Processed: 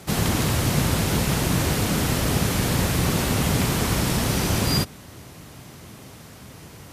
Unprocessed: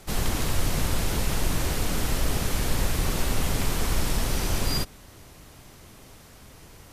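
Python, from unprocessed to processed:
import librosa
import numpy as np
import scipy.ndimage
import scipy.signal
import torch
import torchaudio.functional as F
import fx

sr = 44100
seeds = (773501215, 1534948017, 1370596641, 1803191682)

y = scipy.signal.sosfilt(scipy.signal.butter(2, 110.0, 'highpass', fs=sr, output='sos'), x)
y = fx.bass_treble(y, sr, bass_db=6, treble_db=-1)
y = F.gain(torch.from_numpy(y), 5.5).numpy()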